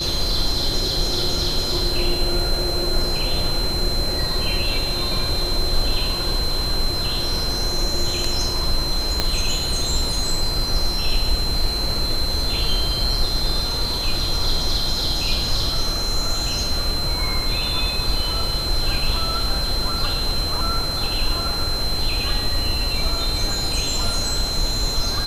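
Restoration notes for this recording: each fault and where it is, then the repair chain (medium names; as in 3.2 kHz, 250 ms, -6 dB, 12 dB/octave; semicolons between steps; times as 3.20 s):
whine 4.1 kHz -24 dBFS
9.20 s: pop -4 dBFS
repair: de-click; band-stop 4.1 kHz, Q 30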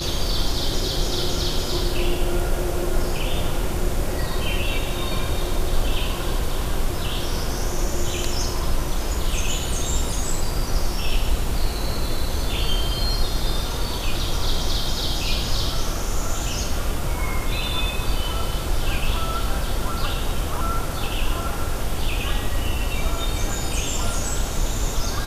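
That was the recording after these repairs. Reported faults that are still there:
9.20 s: pop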